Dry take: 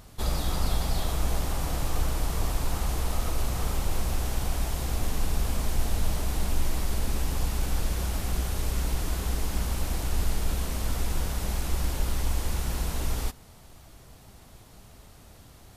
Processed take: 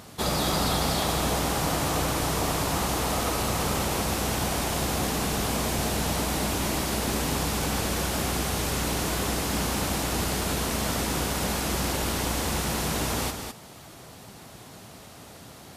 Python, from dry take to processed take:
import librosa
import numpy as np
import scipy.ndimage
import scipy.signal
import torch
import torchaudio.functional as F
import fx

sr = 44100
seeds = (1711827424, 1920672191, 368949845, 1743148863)

p1 = scipy.signal.sosfilt(scipy.signal.butter(2, 140.0, 'highpass', fs=sr, output='sos'), x)
p2 = fx.high_shelf(p1, sr, hz=12000.0, db=-5.0)
p3 = p2 + fx.echo_single(p2, sr, ms=207, db=-6.5, dry=0)
y = F.gain(torch.from_numpy(p3), 8.0).numpy()